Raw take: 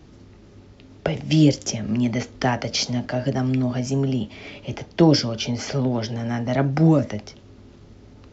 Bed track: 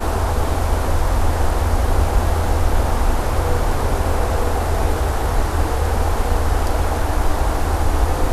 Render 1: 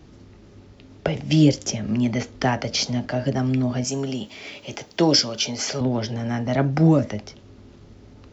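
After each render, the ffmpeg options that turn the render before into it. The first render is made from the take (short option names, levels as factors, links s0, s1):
-filter_complex "[0:a]asettb=1/sr,asplit=3[s0][s1][s2];[s0]atrim=end=3.844[s3];[s1]atrim=start=3.84:end=5.81,asetpts=PTS-STARTPTS,afade=t=in:d=0.004:c=qsin,afade=t=out:st=1.966:d=0.004:c=qsin,aemphasis=mode=production:type=bsi[s4];[s2]atrim=start=5.806[s5];[s3][s4]acrossfade=d=0.004:c1=hsin:c2=qsin[s6];[s6][s5]acrossfade=d=0.004:c1=qsin:c2=hsin"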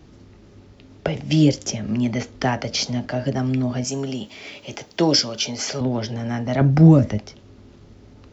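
-filter_complex "[0:a]asettb=1/sr,asplit=3[s0][s1][s2];[s0]atrim=end=6.614[s3];[s1]atrim=start=6.61:end=7.18,asetpts=PTS-STARTPTS,afade=t=in:d=0.004:c=qsin,afade=t=out:st=0.566:d=0.004:c=qsin,lowshelf=f=190:g=11[s4];[s2]atrim=start=7.176[s5];[s3][s4]acrossfade=d=0.004:c1=hsin:c2=qsin[s6];[s6][s5]acrossfade=d=0.004:c1=qsin:c2=hsin"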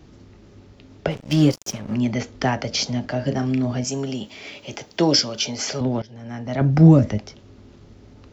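-filter_complex "[0:a]asplit=3[s0][s1][s2];[s0]afade=t=out:st=1.1:d=0.02[s3];[s1]aeval=exprs='sgn(val(0))*max(abs(val(0))-0.0237,0)':c=same,afade=t=in:st=1.1:d=0.02,afade=t=out:st=1.94:d=0.02[s4];[s2]afade=t=in:st=1.94:d=0.02[s5];[s3][s4][s5]amix=inputs=3:normalize=0,asettb=1/sr,asplit=3[s6][s7][s8];[s6]atrim=end=3.224[s9];[s7]atrim=start=3.22:end=3.76,asetpts=PTS-STARTPTS,afade=t=in:d=0.004:c=qsin,afade=t=out:st=0.536:d=0.004:c=qsin,asplit=2[s10][s11];[s11]adelay=34,volume=0.355[s12];[s10][s12]amix=inputs=2:normalize=0,atrim=end_sample=23814[s13];[s8]atrim=start=3.756[s14];[s9][s13]acrossfade=d=0.004:c1=hsin:c2=qsin[s15];[s15][s14]acrossfade=d=0.004:c1=qsin:c2=hsin,asplit=2[s16][s17];[s16]atrim=end=6.02,asetpts=PTS-STARTPTS,afade=t=out:st=6.016:d=0.004:c=hsin:silence=0.1[s18];[s17]atrim=start=6.02,asetpts=PTS-STARTPTS,afade=t=in:d=0.83:silence=0.1[s19];[s18][s19]concat=n=2:v=0:a=1"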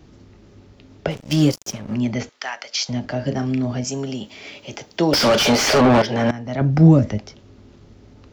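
-filter_complex "[0:a]asettb=1/sr,asplit=3[s0][s1][s2];[s0]atrim=end=1.084[s3];[s1]atrim=start=1.08:end=1.6,asetpts=PTS-STARTPTS,afade=t=in:d=0.004:c=qsin,afade=t=out:st=0.516:d=0.004:c=qsin,highshelf=f=5400:g=7.5[s4];[s2]atrim=start=1.596[s5];[s3][s4]acrossfade=d=0.004:c1=hsin:c2=qsin[s6];[s6][s5]acrossfade=d=0.004:c1=qsin:c2=hsin,asettb=1/sr,asplit=3[s7][s8][s9];[s7]atrim=end=2.294[s10];[s8]atrim=start=2.29:end=2.89,asetpts=PTS-STARTPTS,afade=t=in:d=0.004:c=qsin,afade=t=out:st=0.596:d=0.004:c=qsin,highpass=1200[s11];[s9]atrim=start=2.886[s12];[s10][s11]acrossfade=d=0.004:c1=hsin:c2=qsin[s13];[s13][s12]acrossfade=d=0.004:c1=qsin:c2=hsin,asettb=1/sr,asplit=3[s14][s15][s16];[s14]atrim=end=5.134[s17];[s15]atrim=start=5.13:end=6.31,asetpts=PTS-STARTPTS,afade=t=in:d=0.004:c=qsin,afade=t=out:st=1.176:d=0.004:c=qsin,asplit=2[s18][s19];[s19]highpass=f=720:p=1,volume=63.1,asoftclip=type=tanh:threshold=0.531[s20];[s18][s20]amix=inputs=2:normalize=0,lowpass=f=2000:p=1,volume=0.501[s21];[s16]atrim=start=6.306[s22];[s17][s21]acrossfade=d=0.004:c1=hsin:c2=qsin[s23];[s23][s22]acrossfade=d=0.004:c1=qsin:c2=hsin"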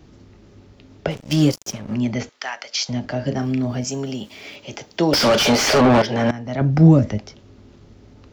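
-filter_complex "[0:a]asettb=1/sr,asplit=3[s0][s1][s2];[s0]atrim=end=3.404[s3];[s1]atrim=start=3.4:end=4.56,asetpts=PTS-STARTPTS,afade=t=in:d=0.004:c=qsin,afade=t=out:st=1.156:d=0.004:c=qsin,aeval=exprs='val(0)*gte(abs(val(0)),0.00335)':c=same[s4];[s2]atrim=start=4.556[s5];[s3][s4]acrossfade=d=0.004:c1=hsin:c2=qsin[s6];[s6][s5]acrossfade=d=0.004:c1=qsin:c2=hsin"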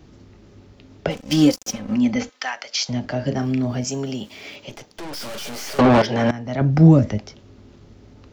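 -filter_complex "[0:a]asettb=1/sr,asplit=3[s0][s1][s2];[s0]atrim=end=1.094[s3];[s1]atrim=start=1.09:end=2.52,asetpts=PTS-STARTPTS,afade=t=in:d=0.004:c=qsin,afade=t=out:st=1.426:d=0.004:c=qsin,aecho=1:1:3.9:0.65,atrim=end_sample=63063[s4];[s2]atrim=start=2.516[s5];[s3][s4]acrossfade=d=0.004:c1=hsin:c2=qsin[s6];[s6][s5]acrossfade=d=0.004:c1=qsin:c2=hsin,asettb=1/sr,asplit=3[s7][s8][s9];[s7]atrim=end=4.694[s10];[s8]atrim=start=4.69:end=5.79,asetpts=PTS-STARTPTS,afade=t=in:d=0.004:c=qsin,afade=t=out:st=1.096:d=0.004:c=qsin,aeval=exprs='(tanh(39.8*val(0)+0.75)-tanh(0.75))/39.8':c=same[s11];[s9]atrim=start=5.786[s12];[s10][s11]acrossfade=d=0.004:c1=hsin:c2=qsin[s13];[s13][s12]acrossfade=d=0.004:c1=qsin:c2=hsin"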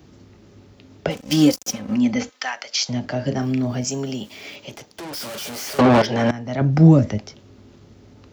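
-af "highpass=66,highshelf=f=9200:g=7"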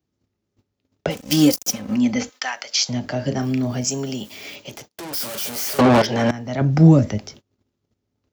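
-af "agate=range=0.0355:threshold=0.00794:ratio=16:detection=peak,highshelf=f=8600:g=11"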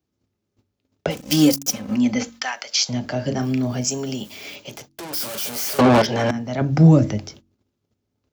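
-af "bandreject=f=1900:w=27,bandreject=f=46.39:t=h:w=4,bandreject=f=92.78:t=h:w=4,bandreject=f=139.17:t=h:w=4,bandreject=f=185.56:t=h:w=4,bandreject=f=231.95:t=h:w=4,bandreject=f=278.34:t=h:w=4,bandreject=f=324.73:t=h:w=4"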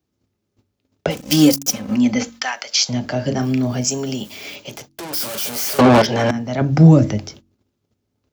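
-af "volume=1.41,alimiter=limit=0.891:level=0:latency=1"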